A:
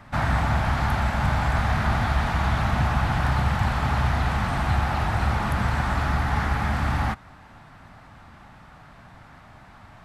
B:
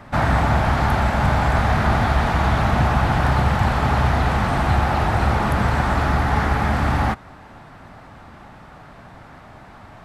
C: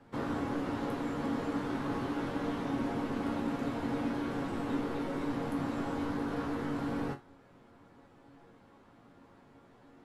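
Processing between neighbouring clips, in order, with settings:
bell 430 Hz +7 dB 1.5 oct; gain +3.5 dB
frequency shift -360 Hz; resonator bank F#2 major, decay 0.22 s; gain -5.5 dB

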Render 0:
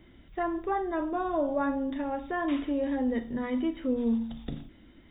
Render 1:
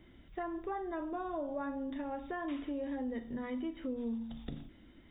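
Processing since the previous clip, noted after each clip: compressor 2.5:1, threshold -34 dBFS, peak gain reduction 7.5 dB; gain -3.5 dB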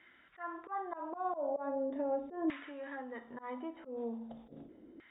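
LFO band-pass saw down 0.4 Hz 380–1800 Hz; auto swell 0.125 s; gain +10.5 dB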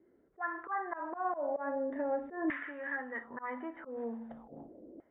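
envelope low-pass 360–1800 Hz up, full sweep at -41.5 dBFS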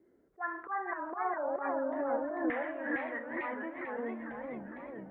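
warbling echo 0.451 s, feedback 61%, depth 220 cents, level -4.5 dB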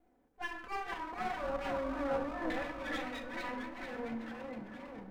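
minimum comb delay 4 ms; shoebox room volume 770 m³, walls furnished, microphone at 1.1 m; gain -2.5 dB

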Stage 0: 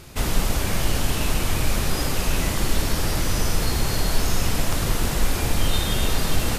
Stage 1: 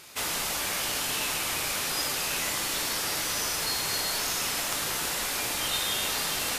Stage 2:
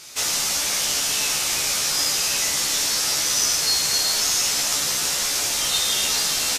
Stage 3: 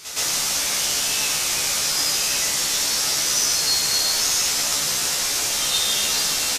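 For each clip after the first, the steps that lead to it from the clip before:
HPF 1300 Hz 6 dB/oct; on a send at -7.5 dB: reverb RT60 0.40 s, pre-delay 7 ms
bell 6000 Hz +11 dB 1.3 oct; doubler 14 ms -3.5 dB
reverse echo 0.117 s -10 dB

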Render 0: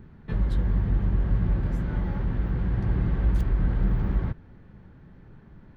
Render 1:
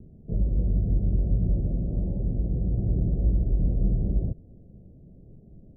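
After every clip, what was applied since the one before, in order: steep low-pass 690 Hz 72 dB/oct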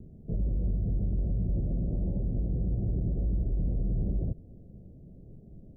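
limiter -22.5 dBFS, peak gain reduction 9.5 dB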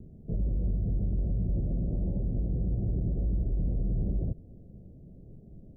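nothing audible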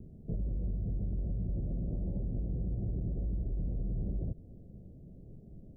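compressor, threshold -29 dBFS, peak gain reduction 4.5 dB; gain -1.5 dB

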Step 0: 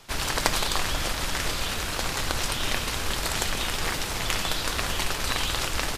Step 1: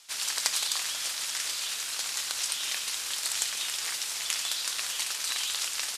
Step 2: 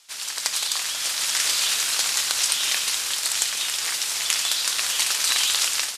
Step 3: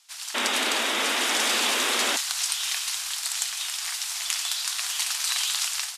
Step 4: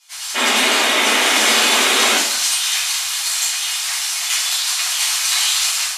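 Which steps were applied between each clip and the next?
LPF 9000 Hz 12 dB/oct; differentiator; gain +4 dB
AGC gain up to 11.5 dB
Chebyshev band-stop 100–680 Hz, order 5; painted sound noise, 0.34–2.17, 210–3900 Hz -22 dBFS; gain -4.5 dB
reverb RT60 0.60 s, pre-delay 6 ms, DRR -9.5 dB

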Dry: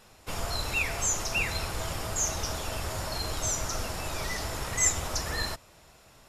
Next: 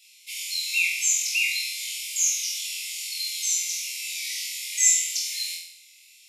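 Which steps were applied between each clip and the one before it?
Chebyshev high-pass 2100 Hz, order 8; on a send: flutter echo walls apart 4 m, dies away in 0.67 s; on the sum: gain +4 dB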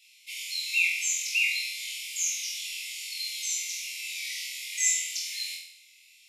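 tone controls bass +13 dB, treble -7 dB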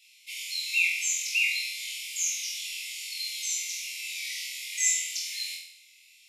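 nothing audible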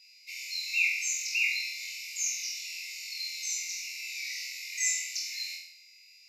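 fixed phaser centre 2200 Hz, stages 8; whine 4900 Hz -56 dBFS

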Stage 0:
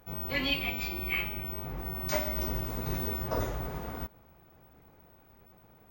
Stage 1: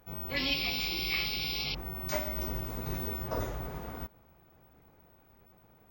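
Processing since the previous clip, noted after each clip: painted sound noise, 0.36–1.75, 2100–5600 Hz -33 dBFS; gain -2.5 dB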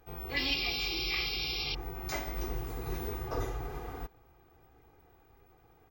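comb 2.5 ms, depth 70%; gain -2 dB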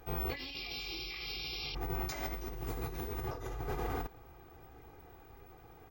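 negative-ratio compressor -41 dBFS, ratio -1; gain +1.5 dB

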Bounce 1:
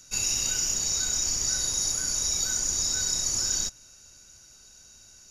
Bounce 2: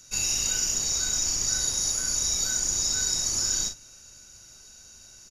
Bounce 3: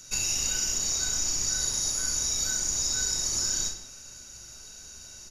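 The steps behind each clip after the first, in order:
reverse; upward compressor, threshold -45 dBFS; reverse; early reflections 39 ms -7.5 dB, 56 ms -15 dB
compressor 2:1, threshold -33 dBFS, peak gain reduction 6.5 dB; on a send at -7 dB: reverb, pre-delay 3 ms; on the sum: gain +3.5 dB

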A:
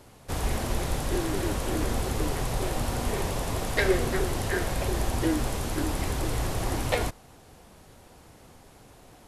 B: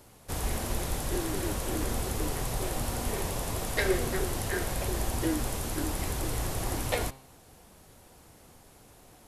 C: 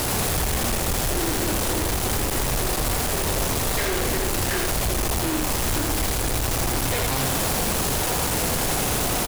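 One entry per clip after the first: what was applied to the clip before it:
high shelf 8400 Hz +9 dB; de-hum 133.2 Hz, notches 37; gain -3.5 dB
infinite clipping; echo 82 ms -4 dB; gain +7 dB

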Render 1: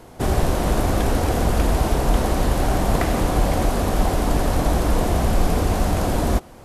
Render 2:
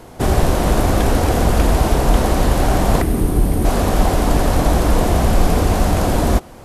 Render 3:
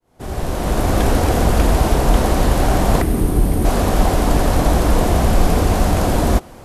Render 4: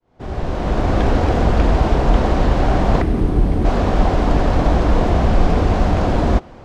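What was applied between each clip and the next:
spectral gain 3.01–3.65, 470–8200 Hz -10 dB; gain +4.5 dB
opening faded in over 1.02 s
air absorption 160 m

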